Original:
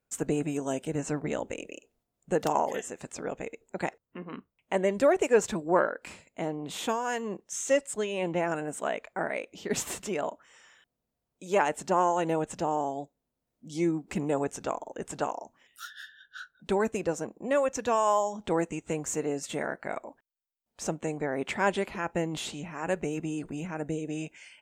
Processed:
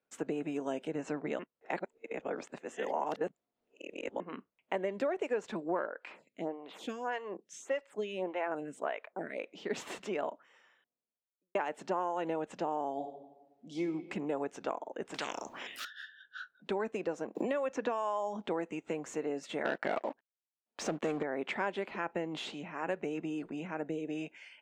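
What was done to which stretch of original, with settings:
1.39–4.20 s: reverse
5.86–9.39 s: lamp-driven phase shifter 1.7 Hz
10.11–11.55 s: studio fade out
12.93–13.82 s: reverb throw, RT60 1.1 s, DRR 3.5 dB
15.14–15.85 s: spectrum-flattening compressor 4:1
17.35–18.42 s: three bands compressed up and down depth 100%
19.65–21.23 s: waveshaping leveller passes 3
whole clip: compression, threshold -28 dBFS; three-band isolator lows -19 dB, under 190 Hz, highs -18 dB, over 4.5 kHz; trim -1.5 dB

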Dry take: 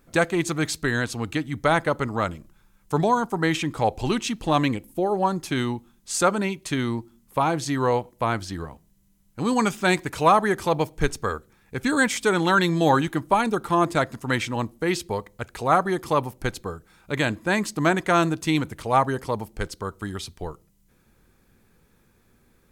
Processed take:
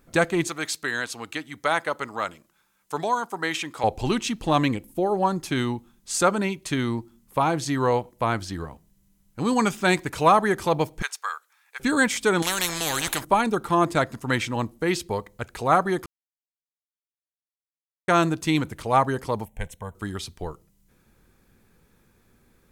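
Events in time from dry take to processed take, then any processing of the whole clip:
0.47–3.84 s: high-pass 790 Hz 6 dB/octave
11.02–11.80 s: high-pass 930 Hz 24 dB/octave
12.42–13.25 s: spectrum-flattening compressor 4:1
16.06–18.08 s: mute
19.45–19.95 s: static phaser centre 1.3 kHz, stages 6

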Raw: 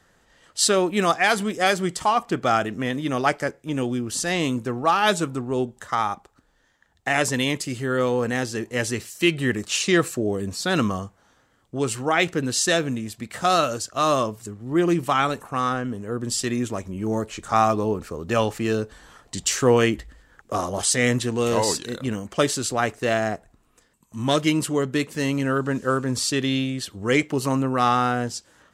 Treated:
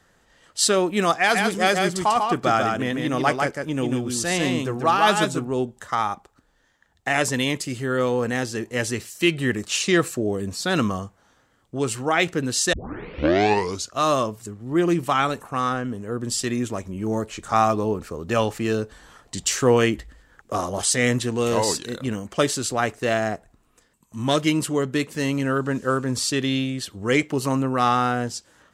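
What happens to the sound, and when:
1.14–5.47 s: delay 145 ms -4 dB
12.73 s: tape start 1.22 s

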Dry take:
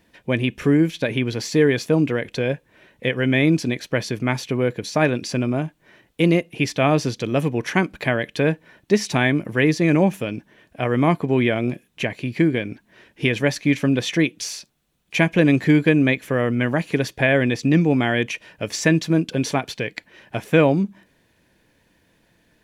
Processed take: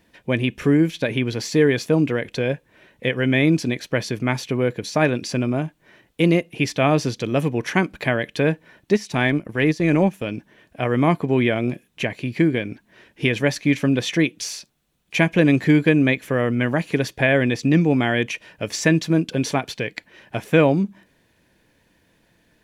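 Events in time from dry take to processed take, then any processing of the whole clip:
8.93–10.26 s: transient shaper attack -4 dB, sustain -8 dB

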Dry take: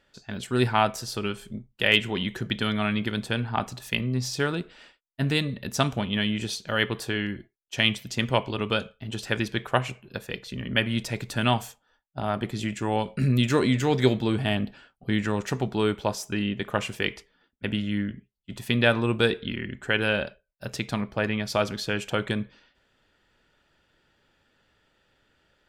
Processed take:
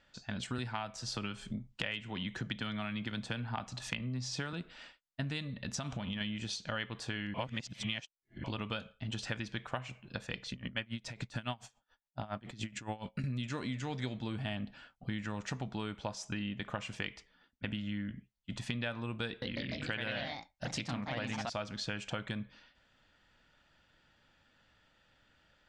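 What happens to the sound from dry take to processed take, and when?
0.58–4.53 s: three bands compressed up and down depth 40%
5.53–6.21 s: compression, threshold -28 dBFS
7.34–8.44 s: reverse
10.52–13.24 s: logarithmic tremolo 7.1 Hz, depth 22 dB
19.27–21.60 s: ever faster or slower copies 149 ms, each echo +2 st, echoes 3
whole clip: low-pass 7.6 kHz 24 dB/octave; peaking EQ 400 Hz -10 dB 0.48 oct; compression 6:1, threshold -34 dBFS; trim -1 dB

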